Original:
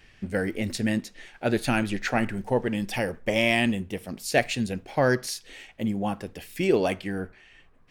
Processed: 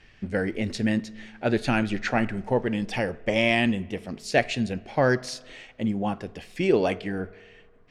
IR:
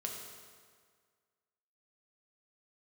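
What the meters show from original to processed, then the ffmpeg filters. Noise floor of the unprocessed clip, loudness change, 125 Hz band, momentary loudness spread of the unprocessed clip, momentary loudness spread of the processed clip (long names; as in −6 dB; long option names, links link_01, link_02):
−56 dBFS, +0.5 dB, +1.0 dB, 11 LU, 12 LU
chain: -filter_complex "[0:a]lowpass=6300,asplit=2[link_01][link_02];[1:a]atrim=start_sample=2205,lowpass=2700[link_03];[link_02][link_03]afir=irnorm=-1:irlink=0,volume=-17.5dB[link_04];[link_01][link_04]amix=inputs=2:normalize=0"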